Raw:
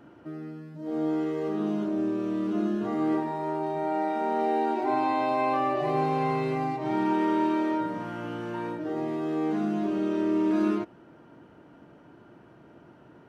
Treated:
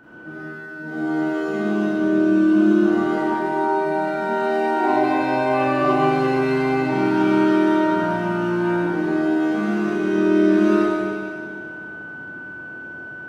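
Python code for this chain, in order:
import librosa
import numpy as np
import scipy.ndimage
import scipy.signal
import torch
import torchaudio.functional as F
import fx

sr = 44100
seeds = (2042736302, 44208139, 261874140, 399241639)

y = x + 10.0 ** (-48.0 / 20.0) * np.sin(2.0 * np.pi * 1500.0 * np.arange(len(x)) / sr)
y = fx.rev_schroeder(y, sr, rt60_s=2.3, comb_ms=31, drr_db=-9.5)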